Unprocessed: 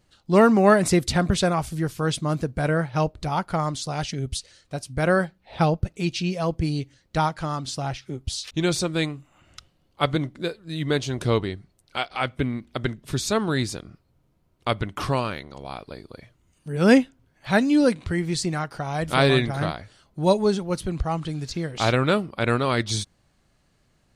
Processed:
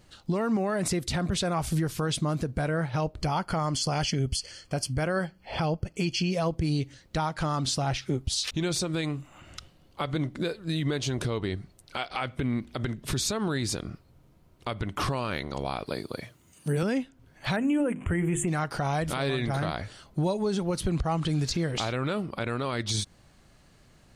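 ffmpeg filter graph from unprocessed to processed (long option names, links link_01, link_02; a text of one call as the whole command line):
ffmpeg -i in.wav -filter_complex "[0:a]asettb=1/sr,asplit=3[link_01][link_02][link_03];[link_01]atrim=end=3.214[link_04];[link_02]atrim=start=3.21:end=6.31,asetpts=PTS-STARTPTS,afade=type=in:duration=0.004:curve=qsin,afade=type=out:start_time=3.096:duration=0.004:curve=qsin,asuperstop=centerf=3800:order=8:qfactor=4.6,equalizer=frequency=3900:width_type=o:width=0.44:gain=9[link_05];[link_03]atrim=start=6.306[link_06];[link_04][link_05]acrossfade=duration=0.004:curve1=hsin:curve2=qsin[link_07];[link_07][link_06]acrossfade=duration=0.004:curve1=qsin:curve2=hsin,asettb=1/sr,asplit=3[link_08][link_09][link_10];[link_08]atrim=end=15.864[link_11];[link_09]atrim=start=15.86:end=16.83,asetpts=PTS-STARTPTS,afade=type=in:duration=0.004:curve=qsin,afade=type=out:start_time=0.966:duration=0.004:curve=qsin,highpass=110,highshelf=frequency=7900:gain=10[link_12];[link_10]atrim=start=16.826[link_13];[link_11][link_12]acrossfade=duration=0.004:curve1=hsin:curve2=qsin[link_14];[link_14][link_13]acrossfade=duration=0.004:curve1=qsin:curve2=hsin,asettb=1/sr,asplit=3[link_15][link_16][link_17];[link_15]atrim=end=17.564[link_18];[link_16]atrim=start=17.56:end=18.48,asetpts=PTS-STARTPTS,afade=type=in:duration=0.004:curve=qsin,afade=type=out:start_time=0.916:duration=0.004:curve=qsin,asuperstop=centerf=4600:order=8:qfactor=1.2,equalizer=frequency=5100:width_type=o:width=0.67:gain=-7,bandreject=frequency=50:width_type=h:width=6,bandreject=frequency=100:width_type=h:width=6,bandreject=frequency=150:width_type=h:width=6,bandreject=frequency=200:width_type=h:width=6,bandreject=frequency=250:width_type=h:width=6,bandreject=frequency=300:width_type=h:width=6,bandreject=frequency=350:width_type=h:width=6,bandreject=frequency=400:width_type=h:width=6[link_19];[link_17]atrim=start=18.476[link_20];[link_18][link_19]acrossfade=duration=0.004:curve1=hsin:curve2=qsin[link_21];[link_21][link_20]acrossfade=duration=0.004:curve1=qsin:curve2=hsin,acompressor=threshold=-28dB:ratio=5,alimiter=level_in=2dB:limit=-24dB:level=0:latency=1:release=46,volume=-2dB,volume=7dB" out.wav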